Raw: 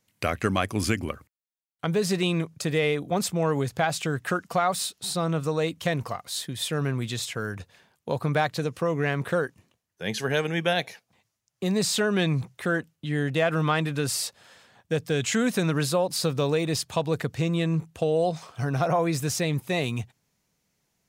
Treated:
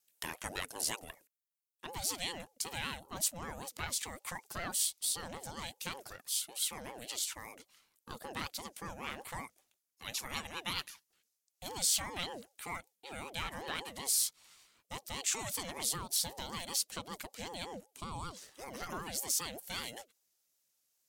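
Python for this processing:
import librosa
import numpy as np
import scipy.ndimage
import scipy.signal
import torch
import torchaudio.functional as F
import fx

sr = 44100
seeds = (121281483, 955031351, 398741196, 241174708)

y = fx.wow_flutter(x, sr, seeds[0], rate_hz=2.1, depth_cents=43.0)
y = librosa.effects.preemphasis(y, coef=0.9, zi=[0.0])
y = fx.ring_lfo(y, sr, carrier_hz=520.0, swing_pct=35, hz=5.2)
y = y * 10.0 ** (2.0 / 20.0)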